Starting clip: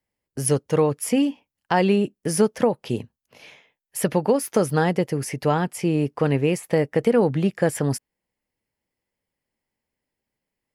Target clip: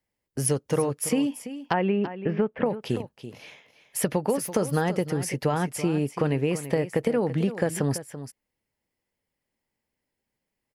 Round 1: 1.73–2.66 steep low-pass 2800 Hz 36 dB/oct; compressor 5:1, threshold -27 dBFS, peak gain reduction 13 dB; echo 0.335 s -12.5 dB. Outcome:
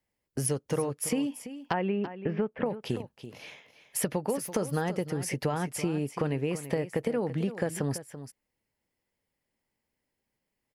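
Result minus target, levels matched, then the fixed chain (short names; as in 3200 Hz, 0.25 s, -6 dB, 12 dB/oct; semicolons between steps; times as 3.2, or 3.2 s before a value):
compressor: peak gain reduction +5 dB
1.73–2.66 steep low-pass 2800 Hz 36 dB/oct; compressor 5:1, threshold -20.5 dBFS, peak gain reduction 7.5 dB; echo 0.335 s -12.5 dB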